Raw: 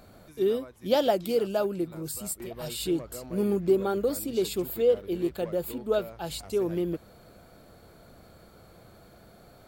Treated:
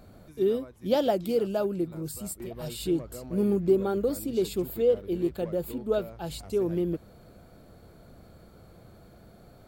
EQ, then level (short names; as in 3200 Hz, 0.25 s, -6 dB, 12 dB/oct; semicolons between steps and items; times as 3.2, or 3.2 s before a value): low shelf 450 Hz +7.5 dB; -4.0 dB